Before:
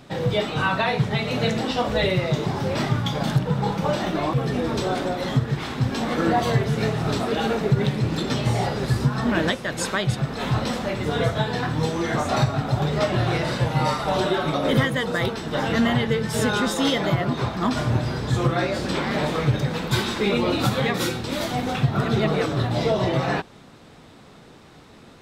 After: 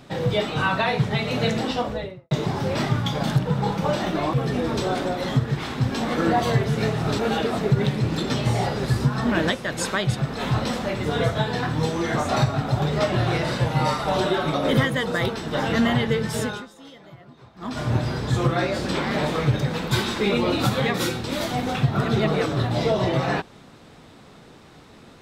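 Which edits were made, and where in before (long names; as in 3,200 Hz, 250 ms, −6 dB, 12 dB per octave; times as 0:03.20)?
0:01.63–0:02.31: fade out and dull
0:07.19–0:07.59: reverse
0:16.27–0:17.95: duck −23.5 dB, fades 0.40 s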